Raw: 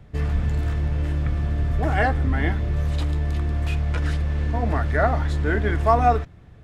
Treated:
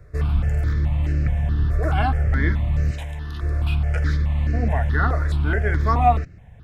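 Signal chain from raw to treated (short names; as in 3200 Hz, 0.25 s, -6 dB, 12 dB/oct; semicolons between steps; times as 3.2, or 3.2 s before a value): 2.91–3.43 low shelf 410 Hz -10 dB; step phaser 4.7 Hz 840–3400 Hz; gain +3 dB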